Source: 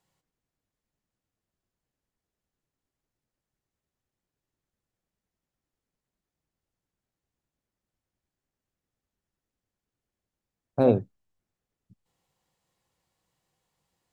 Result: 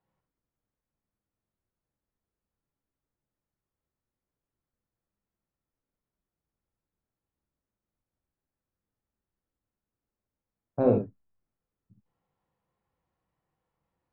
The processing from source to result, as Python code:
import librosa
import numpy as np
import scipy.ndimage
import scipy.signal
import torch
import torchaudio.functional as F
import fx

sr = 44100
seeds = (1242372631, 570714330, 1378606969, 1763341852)

y = scipy.signal.sosfilt(scipy.signal.butter(2, 1700.0, 'lowpass', fs=sr, output='sos'), x)
y = fx.rev_gated(y, sr, seeds[0], gate_ms=80, shape='rising', drr_db=2.5)
y = y * librosa.db_to_amplitude(-3.5)